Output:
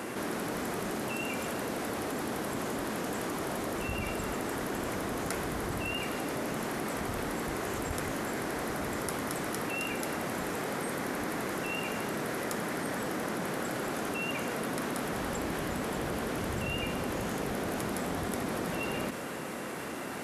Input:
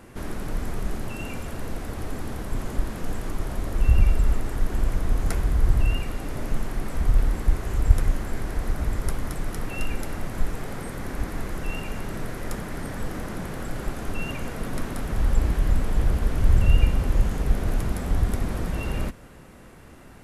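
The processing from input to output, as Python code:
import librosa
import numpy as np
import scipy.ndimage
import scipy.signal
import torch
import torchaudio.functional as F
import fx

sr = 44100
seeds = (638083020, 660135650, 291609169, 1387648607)

y = scipy.signal.sosfilt(scipy.signal.butter(2, 240.0, 'highpass', fs=sr, output='sos'), x)
y = fx.env_flatten(y, sr, amount_pct=70)
y = y * 10.0 ** (-2.0 / 20.0)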